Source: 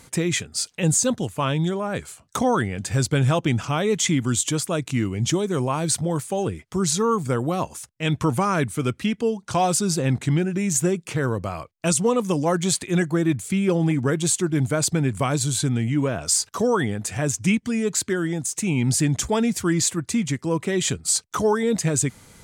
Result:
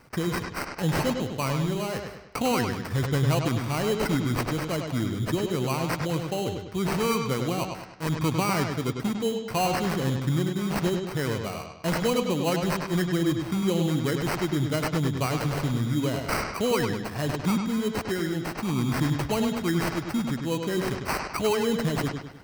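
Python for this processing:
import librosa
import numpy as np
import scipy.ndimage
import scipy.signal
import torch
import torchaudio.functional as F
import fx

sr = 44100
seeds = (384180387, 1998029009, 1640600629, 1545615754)

y = scipy.signal.sosfilt(scipy.signal.bessel(2, 9300.0, 'lowpass', norm='mag', fs=sr, output='sos'), x)
y = fx.sample_hold(y, sr, seeds[0], rate_hz=3500.0, jitter_pct=0)
y = fx.echo_bbd(y, sr, ms=101, stages=4096, feedback_pct=44, wet_db=-5.5)
y = F.gain(torch.from_numpy(y), -5.0).numpy()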